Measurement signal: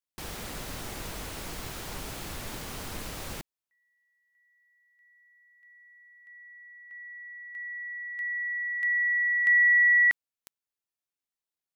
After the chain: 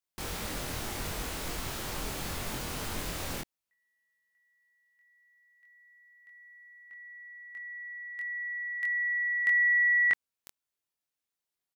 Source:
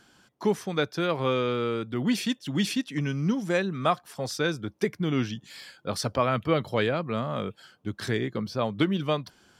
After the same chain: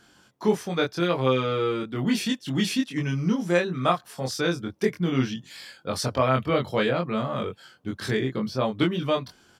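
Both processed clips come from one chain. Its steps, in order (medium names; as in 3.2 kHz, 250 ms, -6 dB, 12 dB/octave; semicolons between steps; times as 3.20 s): doubling 23 ms -2 dB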